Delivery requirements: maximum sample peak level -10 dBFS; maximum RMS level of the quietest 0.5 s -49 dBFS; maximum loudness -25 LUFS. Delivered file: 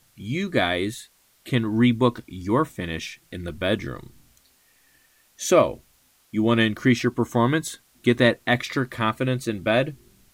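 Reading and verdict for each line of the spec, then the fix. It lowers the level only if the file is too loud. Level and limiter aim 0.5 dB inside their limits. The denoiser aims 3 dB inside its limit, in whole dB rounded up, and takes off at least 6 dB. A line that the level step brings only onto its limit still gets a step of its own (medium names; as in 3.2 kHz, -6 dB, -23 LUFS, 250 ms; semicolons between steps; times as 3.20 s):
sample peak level -5.5 dBFS: fail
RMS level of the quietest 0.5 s -61 dBFS: pass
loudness -23.0 LUFS: fail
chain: trim -2.5 dB; peak limiter -10.5 dBFS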